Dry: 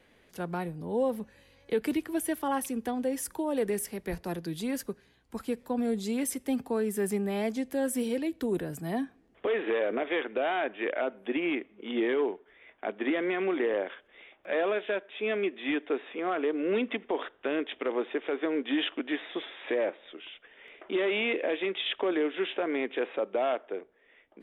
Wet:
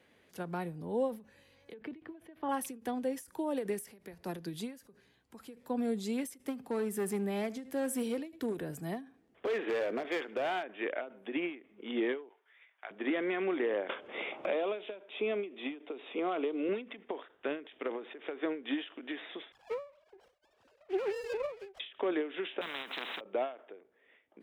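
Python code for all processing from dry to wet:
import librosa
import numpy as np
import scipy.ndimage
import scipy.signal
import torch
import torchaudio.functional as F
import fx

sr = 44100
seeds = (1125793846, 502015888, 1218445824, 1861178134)

y = fx.chain(x, sr, fx.air_absorb(metres=380.0),
    fx.notch(hz=1400.0, q=16.0), at=(1.74, 2.49))
y = fx.chain(y, sr, fx.clip_hard(threshold_db=-24.5),
    fx.echo_feedback(ms=75, feedback_pct=18, wet_db=-20.5), at=(6.38, 10.63))
y = fx.chain(y, sr, fx.highpass(hz=1100.0, slope=12),
    fx.doubler(ms=18.0, db=-11), at=(12.29, 12.91))
y = fx.chain(y, sr, fx.bandpass_edges(low_hz=160.0, high_hz=7500.0),
    fx.peak_eq(hz=1700.0, db=-11.0, octaves=0.48),
    fx.band_squash(depth_pct=100), at=(13.89, 16.69))
y = fx.chain(y, sr, fx.sine_speech(),
    fx.running_max(window=17), at=(19.52, 21.8))
y = fx.chain(y, sr, fx.highpass(hz=270.0, slope=24),
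    fx.high_shelf(hz=3800.0, db=10.0),
    fx.spectral_comp(ratio=10.0), at=(22.61, 23.21))
y = scipy.signal.sosfilt(scipy.signal.butter(2, 80.0, 'highpass', fs=sr, output='sos'), y)
y = fx.end_taper(y, sr, db_per_s=150.0)
y = F.gain(torch.from_numpy(y), -3.5).numpy()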